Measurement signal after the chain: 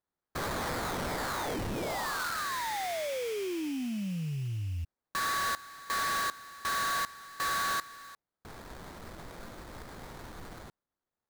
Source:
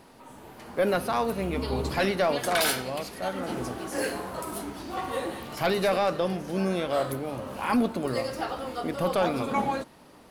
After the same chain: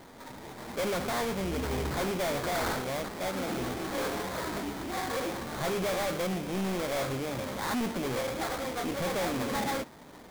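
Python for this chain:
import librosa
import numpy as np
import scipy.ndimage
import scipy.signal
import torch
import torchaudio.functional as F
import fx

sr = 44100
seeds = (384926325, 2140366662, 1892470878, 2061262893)

y = fx.sample_hold(x, sr, seeds[0], rate_hz=2800.0, jitter_pct=20)
y = 10.0 ** (-30.5 / 20.0) * np.tanh(y / 10.0 ** (-30.5 / 20.0))
y = y * 10.0 ** (2.5 / 20.0)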